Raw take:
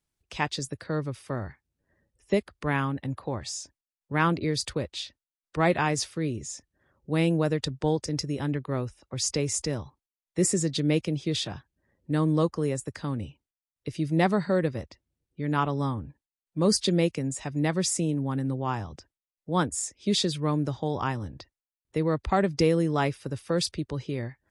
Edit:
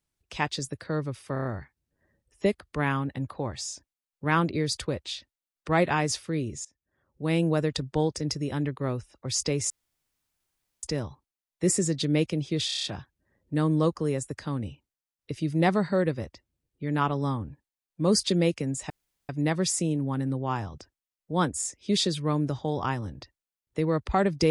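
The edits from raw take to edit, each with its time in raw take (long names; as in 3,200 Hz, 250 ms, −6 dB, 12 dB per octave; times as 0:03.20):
0:01.33: stutter 0.03 s, 5 plays
0:06.53–0:07.33: fade in, from −22 dB
0:09.58: splice in room tone 1.13 s
0:11.41: stutter 0.03 s, 7 plays
0:17.47: splice in room tone 0.39 s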